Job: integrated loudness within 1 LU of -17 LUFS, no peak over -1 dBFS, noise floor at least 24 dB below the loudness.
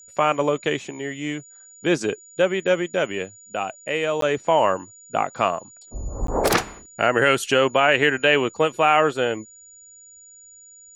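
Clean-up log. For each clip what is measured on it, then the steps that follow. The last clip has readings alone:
dropouts 2; longest dropout 13 ms; steady tone 6.9 kHz; tone level -45 dBFS; loudness -22.0 LUFS; peak level -3.5 dBFS; loudness target -17.0 LUFS
-> interpolate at 4.21/6.27 s, 13 ms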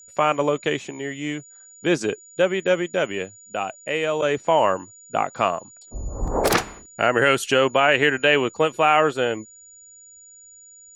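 dropouts 0; steady tone 6.9 kHz; tone level -45 dBFS
-> band-stop 6.9 kHz, Q 30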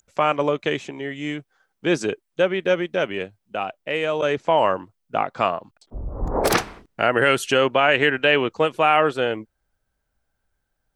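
steady tone not found; loudness -21.5 LUFS; peak level -3.5 dBFS; loudness target -17.0 LUFS
-> trim +4.5 dB; peak limiter -1 dBFS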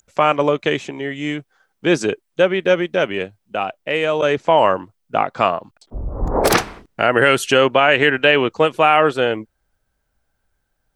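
loudness -17.5 LUFS; peak level -1.0 dBFS; noise floor -71 dBFS

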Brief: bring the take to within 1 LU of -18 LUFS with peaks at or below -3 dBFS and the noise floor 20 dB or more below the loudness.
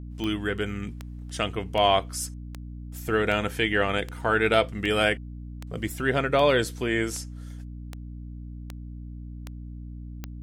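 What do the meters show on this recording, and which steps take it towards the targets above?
clicks found 14; hum 60 Hz; highest harmonic 300 Hz; hum level -36 dBFS; loudness -25.5 LUFS; peak level -8.0 dBFS; loudness target -18.0 LUFS
-> de-click; hum notches 60/120/180/240/300 Hz; trim +7.5 dB; peak limiter -3 dBFS

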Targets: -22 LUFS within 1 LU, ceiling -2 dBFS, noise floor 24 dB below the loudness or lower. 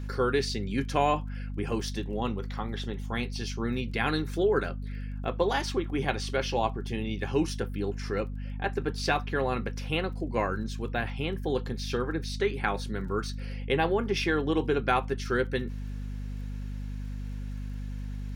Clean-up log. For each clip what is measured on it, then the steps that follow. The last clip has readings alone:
tick rate 20 per s; hum 50 Hz; highest harmonic 250 Hz; hum level -33 dBFS; loudness -30.5 LUFS; peak level -10.5 dBFS; loudness target -22.0 LUFS
-> de-click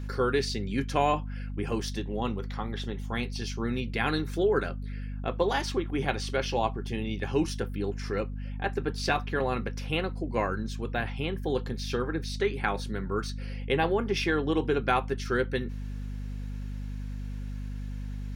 tick rate 0.16 per s; hum 50 Hz; highest harmonic 250 Hz; hum level -33 dBFS
-> de-hum 50 Hz, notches 5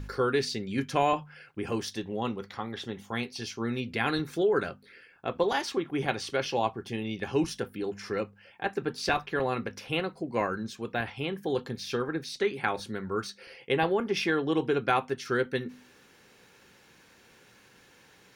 hum not found; loudness -31.0 LUFS; peak level -10.0 dBFS; loudness target -22.0 LUFS
-> trim +9 dB; peak limiter -2 dBFS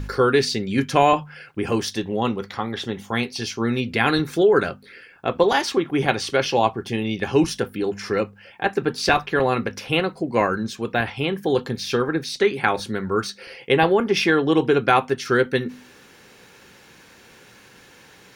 loudness -22.0 LUFS; peak level -2.0 dBFS; noise floor -50 dBFS

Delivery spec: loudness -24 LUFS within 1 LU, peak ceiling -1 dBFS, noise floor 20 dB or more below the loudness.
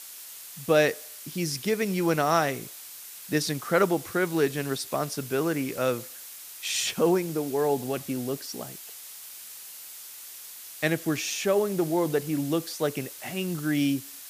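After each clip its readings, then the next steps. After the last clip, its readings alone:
noise floor -44 dBFS; noise floor target -48 dBFS; loudness -27.5 LUFS; peak level -9.5 dBFS; loudness target -24.0 LUFS
-> noise print and reduce 6 dB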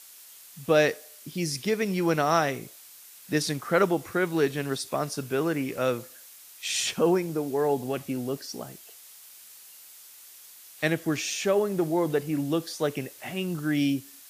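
noise floor -50 dBFS; loudness -27.5 LUFS; peak level -9.5 dBFS; loudness target -24.0 LUFS
-> trim +3.5 dB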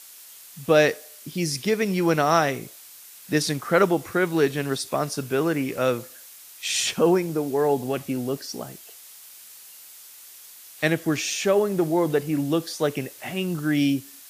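loudness -24.0 LUFS; peak level -6.0 dBFS; noise floor -46 dBFS

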